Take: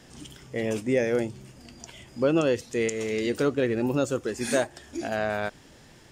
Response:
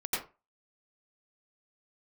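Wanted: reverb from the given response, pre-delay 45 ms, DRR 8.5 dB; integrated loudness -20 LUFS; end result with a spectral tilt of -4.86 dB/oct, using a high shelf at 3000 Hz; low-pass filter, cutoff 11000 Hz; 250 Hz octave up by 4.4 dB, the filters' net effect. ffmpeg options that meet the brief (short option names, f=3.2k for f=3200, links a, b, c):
-filter_complex "[0:a]lowpass=11k,equalizer=f=250:t=o:g=5.5,highshelf=f=3k:g=-5.5,asplit=2[a][b];[1:a]atrim=start_sample=2205,adelay=45[c];[b][c]afir=irnorm=-1:irlink=0,volume=-14.5dB[d];[a][d]amix=inputs=2:normalize=0,volume=4.5dB"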